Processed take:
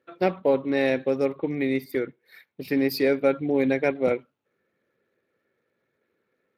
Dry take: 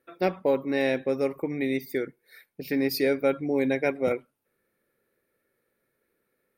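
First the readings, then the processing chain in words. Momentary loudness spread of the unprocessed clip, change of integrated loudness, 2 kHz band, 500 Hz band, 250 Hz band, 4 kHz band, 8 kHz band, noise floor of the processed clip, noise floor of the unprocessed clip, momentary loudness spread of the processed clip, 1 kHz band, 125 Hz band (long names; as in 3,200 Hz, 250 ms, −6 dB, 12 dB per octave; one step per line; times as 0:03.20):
8 LU, +2.5 dB, +1.5 dB, +2.5 dB, +2.5 dB, 0.0 dB, can't be measured, −77 dBFS, −77 dBFS, 8 LU, +2.0 dB, +2.5 dB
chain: level +2 dB
Speex 24 kbit/s 32,000 Hz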